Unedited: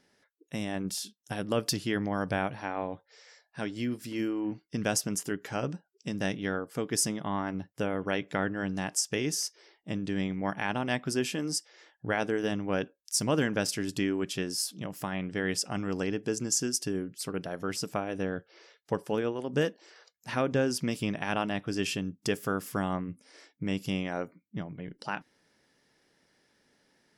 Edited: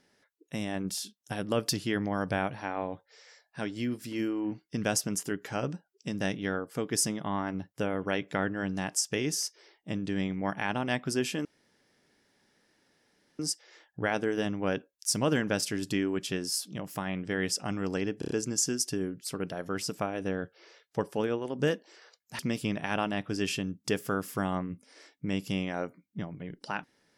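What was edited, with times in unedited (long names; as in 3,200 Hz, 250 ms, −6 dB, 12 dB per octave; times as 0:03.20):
0:11.45: splice in room tone 1.94 s
0:16.25: stutter 0.03 s, 5 plays
0:20.33–0:20.77: remove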